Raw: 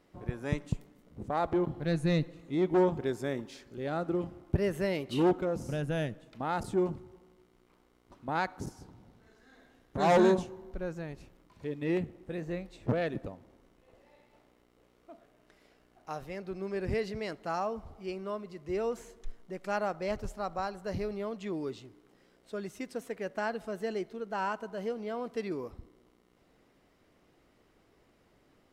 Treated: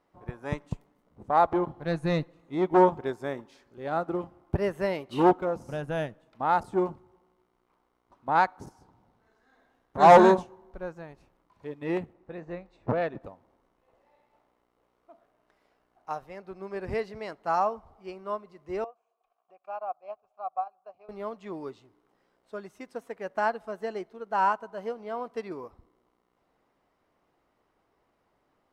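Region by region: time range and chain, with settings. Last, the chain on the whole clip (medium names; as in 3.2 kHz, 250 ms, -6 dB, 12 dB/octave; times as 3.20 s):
12.13–13.21 s: distance through air 88 m + band-stop 3.2 kHz, Q 13
18.84–21.09 s: vowel filter a + transient shaper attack +2 dB, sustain -9 dB + tape noise reduction on one side only encoder only
whole clip: peaking EQ 940 Hz +10.5 dB 1.5 oct; band-stop 7.2 kHz, Q 30; upward expansion 1.5:1, over -43 dBFS; trim +4 dB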